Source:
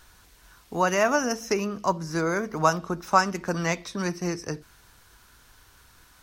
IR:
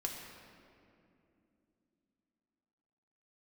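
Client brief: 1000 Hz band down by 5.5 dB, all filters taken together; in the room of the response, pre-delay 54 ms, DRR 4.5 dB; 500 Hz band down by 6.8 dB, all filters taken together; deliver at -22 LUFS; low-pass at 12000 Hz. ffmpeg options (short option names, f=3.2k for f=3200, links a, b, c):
-filter_complex "[0:a]lowpass=12k,equalizer=f=500:t=o:g=-7.5,equalizer=f=1k:t=o:g=-5,asplit=2[a][b];[1:a]atrim=start_sample=2205,adelay=54[c];[b][c]afir=irnorm=-1:irlink=0,volume=-5.5dB[d];[a][d]amix=inputs=2:normalize=0,volume=6dB"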